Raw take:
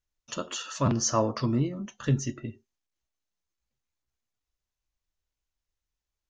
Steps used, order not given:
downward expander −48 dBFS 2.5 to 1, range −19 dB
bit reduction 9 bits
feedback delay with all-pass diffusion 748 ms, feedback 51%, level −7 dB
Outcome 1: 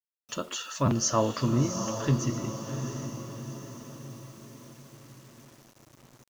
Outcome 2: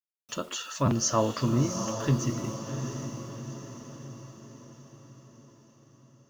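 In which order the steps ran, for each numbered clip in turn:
downward expander, then feedback delay with all-pass diffusion, then bit reduction
downward expander, then bit reduction, then feedback delay with all-pass diffusion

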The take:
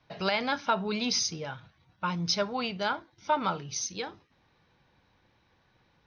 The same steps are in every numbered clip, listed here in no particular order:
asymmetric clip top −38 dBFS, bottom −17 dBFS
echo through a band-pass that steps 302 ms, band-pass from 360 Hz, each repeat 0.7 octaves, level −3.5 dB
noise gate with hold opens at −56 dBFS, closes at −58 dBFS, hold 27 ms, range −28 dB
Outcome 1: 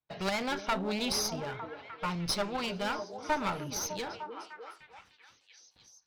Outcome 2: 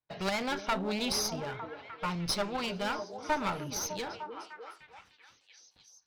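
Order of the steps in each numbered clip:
asymmetric clip, then noise gate with hold, then echo through a band-pass that steps
noise gate with hold, then asymmetric clip, then echo through a band-pass that steps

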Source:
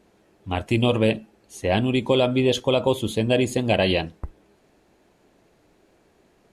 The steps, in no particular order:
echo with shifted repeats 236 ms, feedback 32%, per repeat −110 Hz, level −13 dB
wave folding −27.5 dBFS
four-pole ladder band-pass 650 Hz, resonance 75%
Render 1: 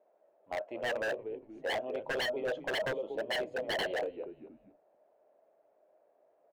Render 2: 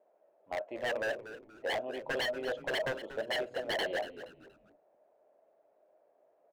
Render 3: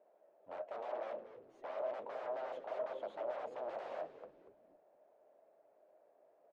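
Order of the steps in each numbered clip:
four-pole ladder band-pass, then echo with shifted repeats, then wave folding
four-pole ladder band-pass, then wave folding, then echo with shifted repeats
wave folding, then four-pole ladder band-pass, then echo with shifted repeats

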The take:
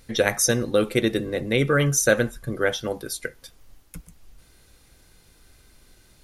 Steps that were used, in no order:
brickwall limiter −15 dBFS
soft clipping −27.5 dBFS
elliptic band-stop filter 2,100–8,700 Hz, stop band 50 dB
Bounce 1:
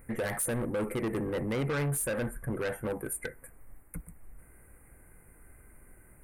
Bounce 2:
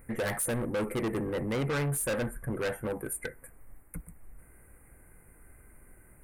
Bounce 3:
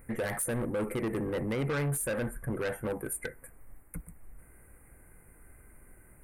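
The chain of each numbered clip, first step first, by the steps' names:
elliptic band-stop filter, then brickwall limiter, then soft clipping
elliptic band-stop filter, then soft clipping, then brickwall limiter
brickwall limiter, then elliptic band-stop filter, then soft clipping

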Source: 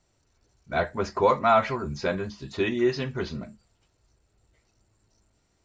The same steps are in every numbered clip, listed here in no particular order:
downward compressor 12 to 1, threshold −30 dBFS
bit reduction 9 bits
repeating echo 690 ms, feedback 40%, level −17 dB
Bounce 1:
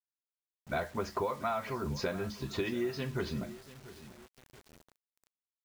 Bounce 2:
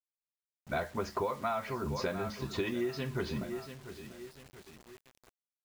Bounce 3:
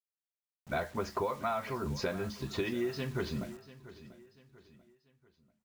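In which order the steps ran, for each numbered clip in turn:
downward compressor, then repeating echo, then bit reduction
repeating echo, then downward compressor, then bit reduction
downward compressor, then bit reduction, then repeating echo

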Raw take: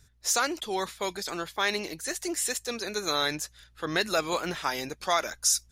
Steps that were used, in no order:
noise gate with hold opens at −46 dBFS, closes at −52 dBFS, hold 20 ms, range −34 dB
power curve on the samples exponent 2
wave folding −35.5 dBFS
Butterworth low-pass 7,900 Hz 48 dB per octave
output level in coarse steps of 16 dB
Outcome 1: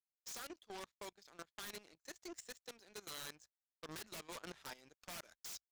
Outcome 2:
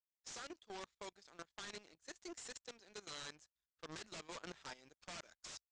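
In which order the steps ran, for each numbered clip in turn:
Butterworth low-pass, then power curve on the samples, then noise gate with hold, then wave folding, then output level in coarse steps
noise gate with hold, then power curve on the samples, then wave folding, then output level in coarse steps, then Butterworth low-pass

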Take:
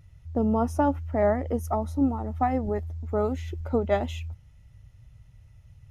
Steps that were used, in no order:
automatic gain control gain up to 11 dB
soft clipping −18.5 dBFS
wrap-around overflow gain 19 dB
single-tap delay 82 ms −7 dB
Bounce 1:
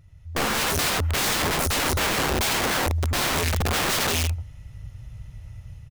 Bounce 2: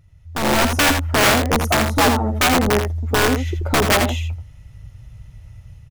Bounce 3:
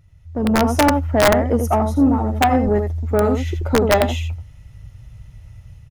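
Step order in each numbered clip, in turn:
single-tap delay, then soft clipping, then automatic gain control, then wrap-around overflow
wrap-around overflow, then soft clipping, then single-tap delay, then automatic gain control
single-tap delay, then soft clipping, then wrap-around overflow, then automatic gain control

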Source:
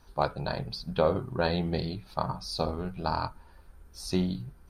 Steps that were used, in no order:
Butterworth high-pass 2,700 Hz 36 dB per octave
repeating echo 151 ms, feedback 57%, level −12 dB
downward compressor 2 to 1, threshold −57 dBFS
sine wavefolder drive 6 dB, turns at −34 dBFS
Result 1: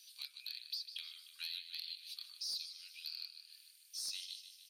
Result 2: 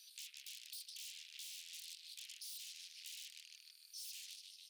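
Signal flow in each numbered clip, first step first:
Butterworth high-pass, then downward compressor, then repeating echo, then sine wavefolder
repeating echo, then sine wavefolder, then Butterworth high-pass, then downward compressor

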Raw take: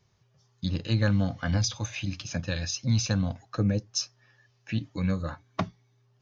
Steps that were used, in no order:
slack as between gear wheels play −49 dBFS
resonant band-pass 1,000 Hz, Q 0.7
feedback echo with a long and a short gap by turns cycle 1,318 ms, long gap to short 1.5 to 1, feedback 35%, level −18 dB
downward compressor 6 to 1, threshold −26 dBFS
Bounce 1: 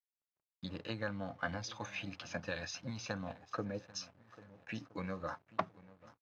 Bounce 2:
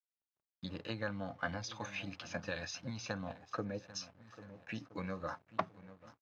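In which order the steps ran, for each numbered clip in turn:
downward compressor, then feedback echo with a long and a short gap by turns, then slack as between gear wheels, then resonant band-pass
feedback echo with a long and a short gap by turns, then slack as between gear wheels, then downward compressor, then resonant band-pass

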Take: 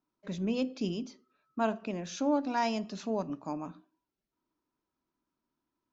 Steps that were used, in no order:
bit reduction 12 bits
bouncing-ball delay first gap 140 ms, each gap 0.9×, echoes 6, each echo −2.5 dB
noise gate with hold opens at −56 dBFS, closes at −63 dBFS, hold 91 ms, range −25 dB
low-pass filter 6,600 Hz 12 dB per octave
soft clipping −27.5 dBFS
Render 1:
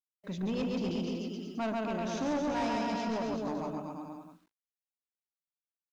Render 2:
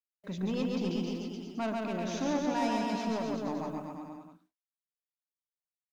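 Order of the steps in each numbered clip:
bouncing-ball delay, then soft clipping, then low-pass filter, then bit reduction, then noise gate with hold
low-pass filter, then soft clipping, then bit reduction, then bouncing-ball delay, then noise gate with hold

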